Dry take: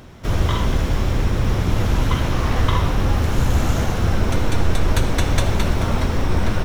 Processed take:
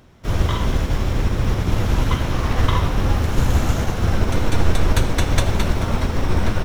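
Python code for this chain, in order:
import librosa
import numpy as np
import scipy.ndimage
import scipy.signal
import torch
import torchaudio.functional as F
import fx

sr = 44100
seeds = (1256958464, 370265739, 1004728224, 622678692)

y = fx.upward_expand(x, sr, threshold_db=-32.0, expansion=1.5)
y = F.gain(torch.from_numpy(y), 2.5).numpy()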